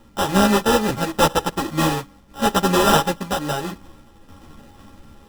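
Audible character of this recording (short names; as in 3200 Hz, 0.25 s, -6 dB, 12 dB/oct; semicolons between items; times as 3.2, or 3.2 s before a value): a buzz of ramps at a fixed pitch in blocks of 32 samples; random-step tremolo 3.5 Hz; aliases and images of a low sample rate 2200 Hz, jitter 0%; a shimmering, thickened sound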